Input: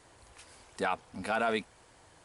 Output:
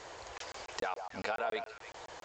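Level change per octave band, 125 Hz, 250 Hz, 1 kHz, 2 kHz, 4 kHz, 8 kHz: -7.0, -10.5, -4.0, -4.5, -1.5, +1.5 dB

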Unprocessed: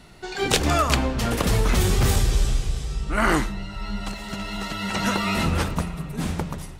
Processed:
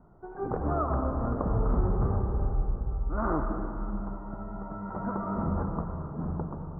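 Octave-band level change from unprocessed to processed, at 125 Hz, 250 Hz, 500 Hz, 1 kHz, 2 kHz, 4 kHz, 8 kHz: -6.0 dB, -6.0 dB, -6.0 dB, -7.0 dB, -20.5 dB, under -40 dB, under -40 dB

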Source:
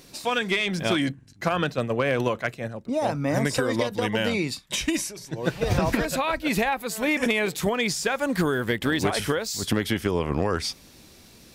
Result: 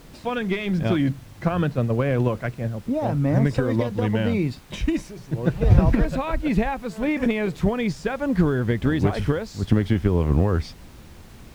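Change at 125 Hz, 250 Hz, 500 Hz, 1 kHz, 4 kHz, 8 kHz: +9.0, +4.5, +0.5, -2.5, -9.0, -14.0 dB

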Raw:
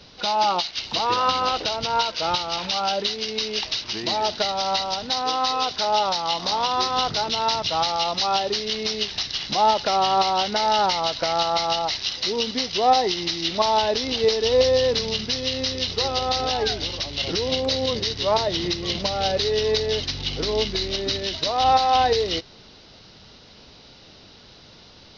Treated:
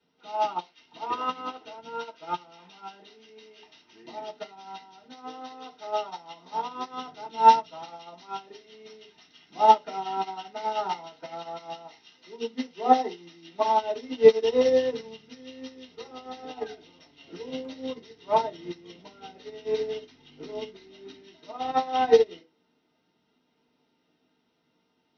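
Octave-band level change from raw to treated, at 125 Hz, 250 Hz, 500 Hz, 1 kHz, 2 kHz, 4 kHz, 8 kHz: -18.0 dB, -6.0 dB, -3.5 dB, -4.5 dB, -12.0 dB, -20.0 dB, n/a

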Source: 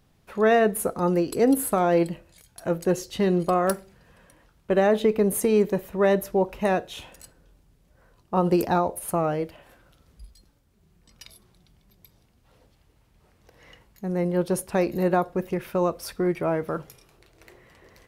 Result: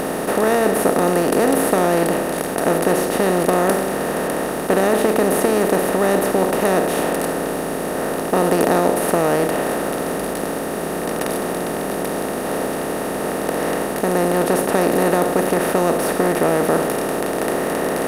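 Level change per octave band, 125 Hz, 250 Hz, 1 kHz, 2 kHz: +4.0, +6.5, +8.5, +11.0 dB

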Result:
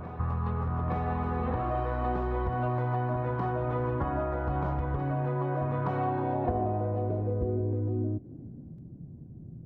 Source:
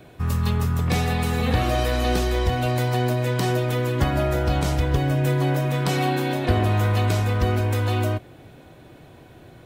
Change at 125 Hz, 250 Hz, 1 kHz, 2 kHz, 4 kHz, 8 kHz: -9.0 dB, -7.5 dB, -4.5 dB, -13.0 dB, under -25 dB, under -40 dB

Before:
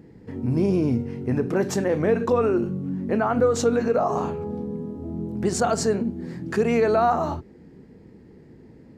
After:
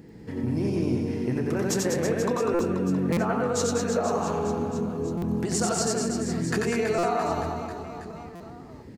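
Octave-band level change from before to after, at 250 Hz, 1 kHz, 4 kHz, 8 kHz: -2.0, -3.5, +3.0, +4.0 dB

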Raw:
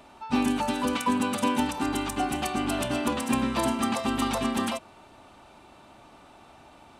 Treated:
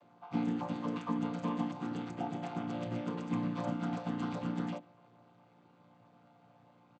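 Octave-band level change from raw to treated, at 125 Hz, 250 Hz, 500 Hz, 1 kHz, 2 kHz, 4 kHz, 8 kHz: -1.5 dB, -8.0 dB, -10.5 dB, -13.0 dB, -15.5 dB, -19.0 dB, under -25 dB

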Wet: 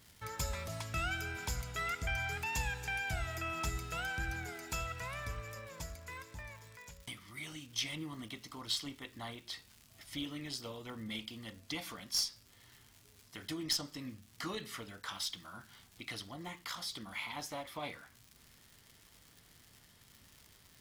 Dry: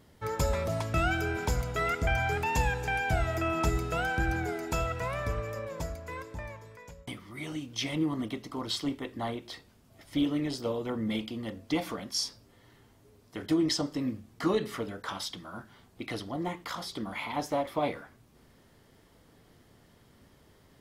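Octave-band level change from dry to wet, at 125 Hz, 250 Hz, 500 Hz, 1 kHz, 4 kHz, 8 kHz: -10.0, -14.0, -15.0, -10.0, -2.0, -1.0 dB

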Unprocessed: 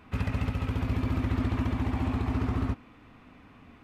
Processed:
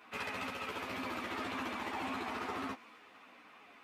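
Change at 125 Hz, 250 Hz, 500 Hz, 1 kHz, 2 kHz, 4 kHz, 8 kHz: -27.0 dB, -12.5 dB, -4.0 dB, 0.0 dB, +1.5 dB, +2.0 dB, n/a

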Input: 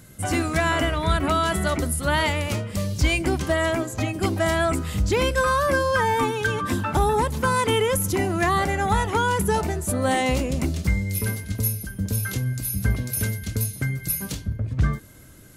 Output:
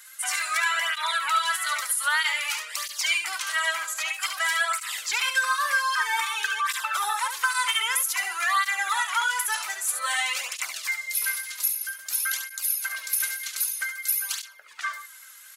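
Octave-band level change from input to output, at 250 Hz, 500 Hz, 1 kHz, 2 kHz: under -40 dB, -22.5 dB, -3.0 dB, +2.5 dB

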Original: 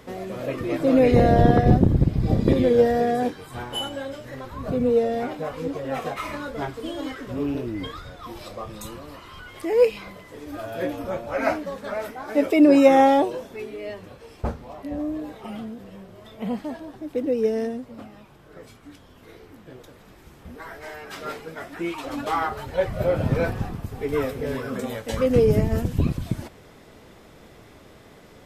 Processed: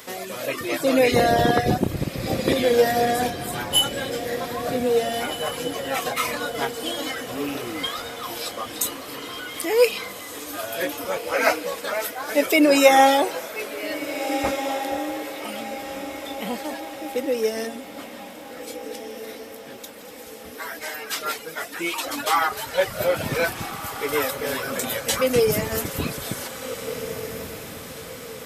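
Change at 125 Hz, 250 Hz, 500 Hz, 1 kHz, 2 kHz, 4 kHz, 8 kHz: -8.0 dB, -4.0 dB, 0.0 dB, +3.0 dB, +8.0 dB, +11.0 dB, n/a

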